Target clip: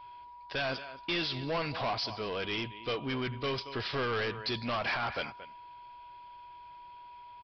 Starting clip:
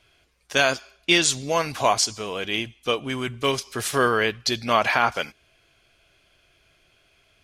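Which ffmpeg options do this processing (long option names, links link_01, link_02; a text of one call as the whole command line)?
ffmpeg -i in.wav -filter_complex "[0:a]alimiter=limit=-11dB:level=0:latency=1:release=92,aeval=exprs='val(0)+0.00631*sin(2*PI*970*n/s)':channel_layout=same,asplit=2[link_01][link_02];[link_02]adelay=227.4,volume=-19dB,highshelf=frequency=4000:gain=-5.12[link_03];[link_01][link_03]amix=inputs=2:normalize=0,aresample=11025,asoftclip=type=tanh:threshold=-26dB,aresample=44100,volume=-2.5dB" out.wav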